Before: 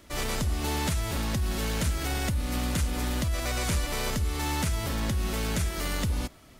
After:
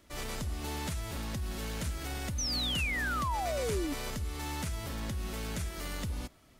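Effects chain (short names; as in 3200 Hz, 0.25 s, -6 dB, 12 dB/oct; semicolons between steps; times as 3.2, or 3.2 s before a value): painted sound fall, 2.38–3.94, 270–6300 Hz -26 dBFS; gain -8 dB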